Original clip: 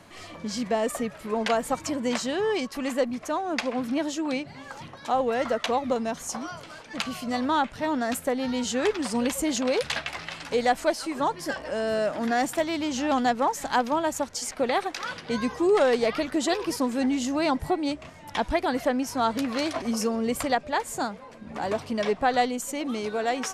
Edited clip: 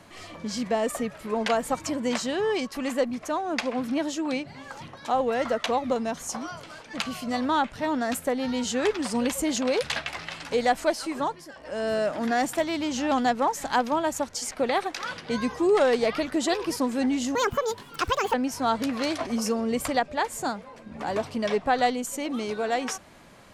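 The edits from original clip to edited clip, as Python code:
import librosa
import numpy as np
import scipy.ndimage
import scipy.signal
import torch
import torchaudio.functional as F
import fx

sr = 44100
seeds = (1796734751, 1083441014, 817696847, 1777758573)

y = fx.edit(x, sr, fx.fade_down_up(start_s=11.16, length_s=0.7, db=-15.5, fade_s=0.34),
    fx.speed_span(start_s=17.35, length_s=1.54, speed=1.56), tone=tone)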